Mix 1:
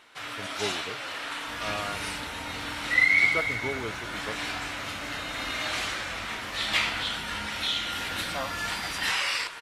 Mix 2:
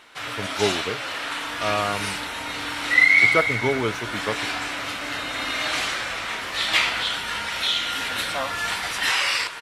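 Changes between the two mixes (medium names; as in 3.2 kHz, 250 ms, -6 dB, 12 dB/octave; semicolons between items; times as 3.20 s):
speech +10.5 dB; first sound +5.5 dB; reverb: off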